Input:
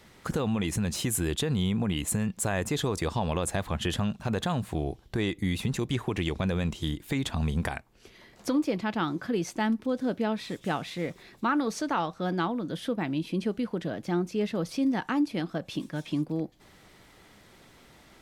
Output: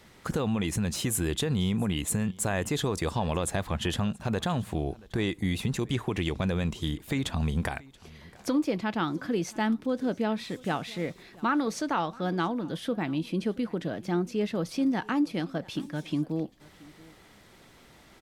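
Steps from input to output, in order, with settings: echo 0.679 s -23 dB

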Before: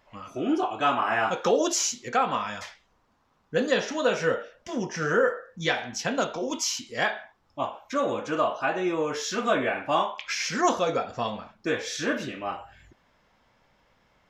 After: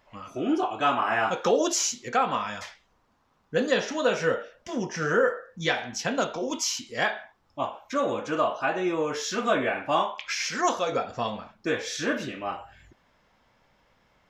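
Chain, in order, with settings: 10.3–10.92 low shelf 340 Hz -8.5 dB

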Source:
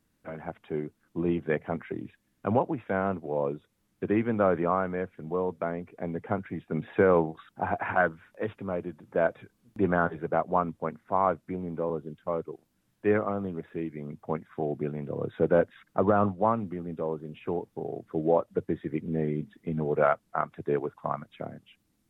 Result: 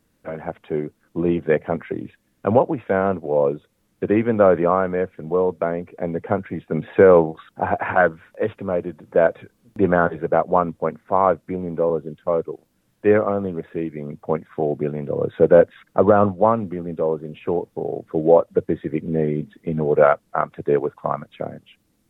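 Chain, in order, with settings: bell 510 Hz +5.5 dB 0.55 oct; gain +6.5 dB

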